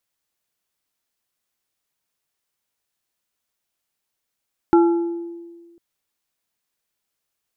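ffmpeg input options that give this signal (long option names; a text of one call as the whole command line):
ffmpeg -f lavfi -i "aevalsrc='0.355*pow(10,-3*t/1.57)*sin(2*PI*340*t)+0.158*pow(10,-3*t/0.827)*sin(2*PI*850*t)+0.0708*pow(10,-3*t/0.595)*sin(2*PI*1360*t)':duration=1.05:sample_rate=44100" out.wav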